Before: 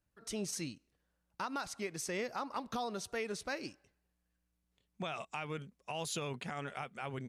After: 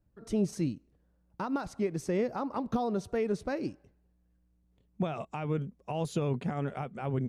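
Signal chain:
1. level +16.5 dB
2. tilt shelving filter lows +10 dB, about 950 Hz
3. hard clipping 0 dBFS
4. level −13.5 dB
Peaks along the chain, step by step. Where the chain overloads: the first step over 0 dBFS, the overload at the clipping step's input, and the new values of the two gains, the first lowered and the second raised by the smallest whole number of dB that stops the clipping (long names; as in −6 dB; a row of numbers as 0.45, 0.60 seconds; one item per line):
−11.5, −4.5, −4.5, −18.0 dBFS
no step passes full scale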